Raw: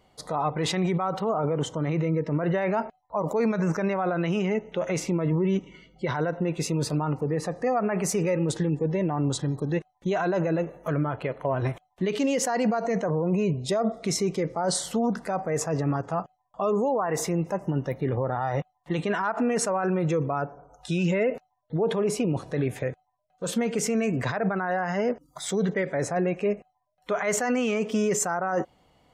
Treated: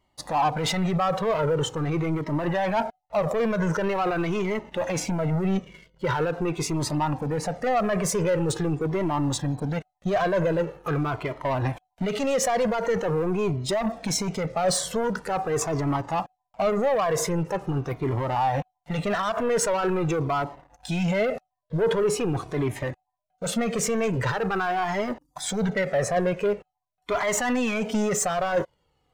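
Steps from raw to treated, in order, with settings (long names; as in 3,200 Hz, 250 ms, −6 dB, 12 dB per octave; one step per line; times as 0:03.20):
dynamic equaliser 1,000 Hz, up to +4 dB, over −36 dBFS, Q 0.77
leveller curve on the samples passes 2
flanger whose copies keep moving one way falling 0.44 Hz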